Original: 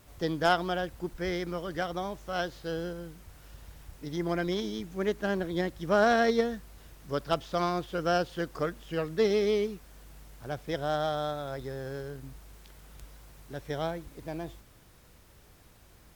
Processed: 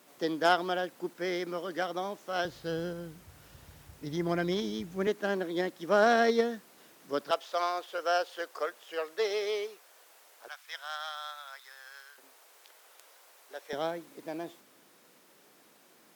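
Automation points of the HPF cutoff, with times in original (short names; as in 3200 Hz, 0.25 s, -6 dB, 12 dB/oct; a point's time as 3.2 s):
HPF 24 dB/oct
220 Hz
from 2.45 s 73 Hz
from 5.07 s 220 Hz
from 7.31 s 480 Hz
from 10.48 s 1100 Hz
from 12.18 s 480 Hz
from 13.73 s 220 Hz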